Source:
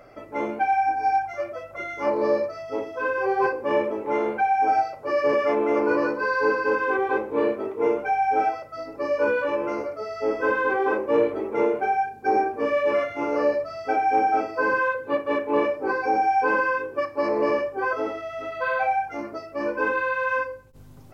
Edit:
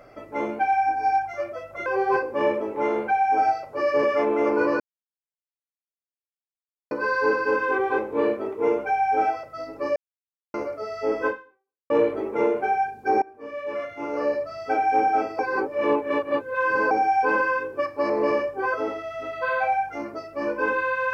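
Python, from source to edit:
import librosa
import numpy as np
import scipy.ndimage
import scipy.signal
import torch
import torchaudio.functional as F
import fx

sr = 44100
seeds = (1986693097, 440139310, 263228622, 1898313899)

y = fx.edit(x, sr, fx.cut(start_s=1.86, length_s=1.3),
    fx.insert_silence(at_s=6.1, length_s=2.11),
    fx.silence(start_s=9.15, length_s=0.58),
    fx.fade_out_span(start_s=10.46, length_s=0.63, curve='exp'),
    fx.fade_in_from(start_s=12.41, length_s=1.46, floor_db=-23.5),
    fx.reverse_span(start_s=14.58, length_s=1.52), tone=tone)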